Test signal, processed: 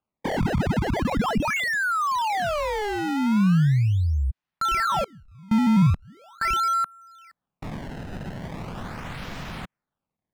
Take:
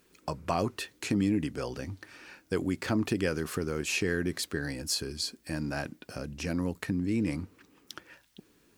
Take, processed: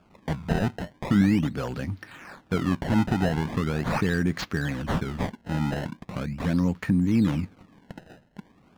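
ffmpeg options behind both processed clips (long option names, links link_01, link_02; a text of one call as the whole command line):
ffmpeg -i in.wav -filter_complex "[0:a]acrusher=samples=22:mix=1:aa=0.000001:lfo=1:lforange=35.2:lforate=0.4,asplit=2[link_01][link_02];[link_02]highpass=frequency=720:poles=1,volume=15dB,asoftclip=type=tanh:threshold=-13.5dB[link_03];[link_01][link_03]amix=inputs=2:normalize=0,lowpass=frequency=1800:poles=1,volume=-6dB,lowshelf=frequency=260:width_type=q:width=1.5:gain=10" out.wav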